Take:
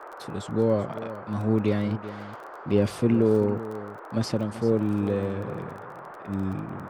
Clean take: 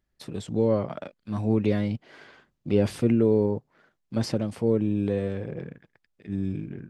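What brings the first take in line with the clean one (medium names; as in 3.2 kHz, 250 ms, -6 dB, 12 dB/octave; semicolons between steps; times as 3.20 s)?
de-click; noise print and reduce 30 dB; inverse comb 385 ms -14.5 dB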